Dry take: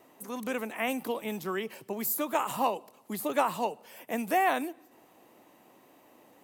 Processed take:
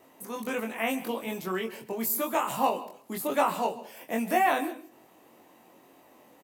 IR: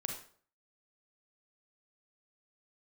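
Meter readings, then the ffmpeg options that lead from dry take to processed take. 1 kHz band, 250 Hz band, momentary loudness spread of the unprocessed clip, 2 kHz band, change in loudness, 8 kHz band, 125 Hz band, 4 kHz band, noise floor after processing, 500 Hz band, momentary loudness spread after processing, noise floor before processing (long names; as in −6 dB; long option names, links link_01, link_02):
+2.0 dB, +2.0 dB, 12 LU, +1.5 dB, +2.0 dB, +2.0 dB, +1.5 dB, +2.0 dB, −58 dBFS, +2.0 dB, 12 LU, −60 dBFS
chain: -filter_complex "[0:a]asplit=2[link_01][link_02];[link_02]adelay=22,volume=-3dB[link_03];[link_01][link_03]amix=inputs=2:normalize=0,asplit=2[link_04][link_05];[1:a]atrim=start_sample=2205,asetrate=74970,aresample=44100,adelay=135[link_06];[link_05][link_06]afir=irnorm=-1:irlink=0,volume=-11.5dB[link_07];[link_04][link_07]amix=inputs=2:normalize=0"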